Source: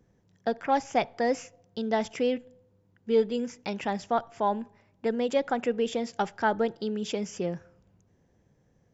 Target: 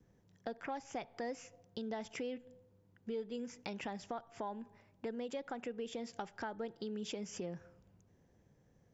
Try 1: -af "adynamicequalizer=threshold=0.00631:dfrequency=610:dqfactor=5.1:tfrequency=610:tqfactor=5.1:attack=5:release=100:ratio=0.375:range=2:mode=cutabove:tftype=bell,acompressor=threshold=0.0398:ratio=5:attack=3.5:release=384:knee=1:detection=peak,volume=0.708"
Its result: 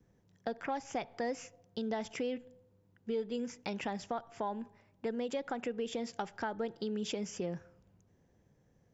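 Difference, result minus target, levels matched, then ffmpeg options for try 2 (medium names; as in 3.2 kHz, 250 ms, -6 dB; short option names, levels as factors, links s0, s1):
compression: peak gain reduction -5 dB
-af "adynamicequalizer=threshold=0.00631:dfrequency=610:dqfactor=5.1:tfrequency=610:tqfactor=5.1:attack=5:release=100:ratio=0.375:range=2:mode=cutabove:tftype=bell,acompressor=threshold=0.0188:ratio=5:attack=3.5:release=384:knee=1:detection=peak,volume=0.708"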